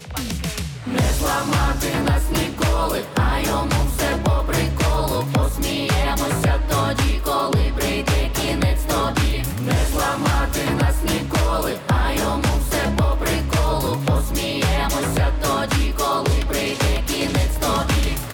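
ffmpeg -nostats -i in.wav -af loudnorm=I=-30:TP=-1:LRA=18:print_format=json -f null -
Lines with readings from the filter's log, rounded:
"input_i" : "-20.6",
"input_tp" : "-10.4",
"input_lra" : "0.3",
"input_thresh" : "-30.6",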